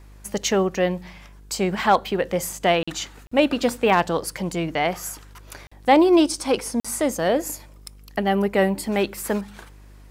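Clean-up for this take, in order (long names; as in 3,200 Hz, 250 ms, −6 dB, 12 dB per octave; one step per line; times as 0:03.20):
clipped peaks rebuilt −6.5 dBFS
hum removal 50.3 Hz, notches 10
repair the gap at 0:02.83/0:03.27/0:05.67/0:06.80, 45 ms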